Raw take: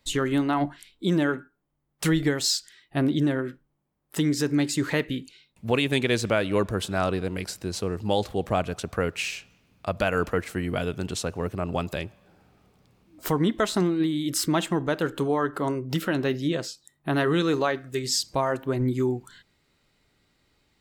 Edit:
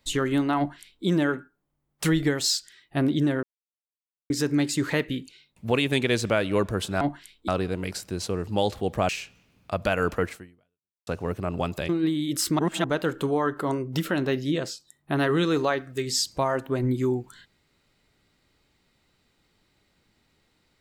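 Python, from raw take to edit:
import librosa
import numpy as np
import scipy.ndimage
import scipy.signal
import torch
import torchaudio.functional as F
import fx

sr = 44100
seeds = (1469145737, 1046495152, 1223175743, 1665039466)

y = fx.edit(x, sr, fx.duplicate(start_s=0.58, length_s=0.47, to_s=7.01),
    fx.silence(start_s=3.43, length_s=0.87),
    fx.cut(start_s=8.62, length_s=0.62),
    fx.fade_out_span(start_s=10.46, length_s=0.76, curve='exp'),
    fx.cut(start_s=12.04, length_s=1.82),
    fx.reverse_span(start_s=14.56, length_s=0.25), tone=tone)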